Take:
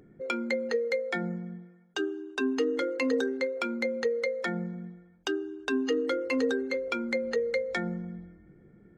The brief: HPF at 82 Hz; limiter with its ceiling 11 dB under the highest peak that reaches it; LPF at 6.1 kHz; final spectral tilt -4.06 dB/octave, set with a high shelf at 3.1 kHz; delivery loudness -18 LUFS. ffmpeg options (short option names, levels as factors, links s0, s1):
-af "highpass=82,lowpass=6100,highshelf=f=3100:g=-6.5,volume=7.94,alimiter=limit=0.316:level=0:latency=1"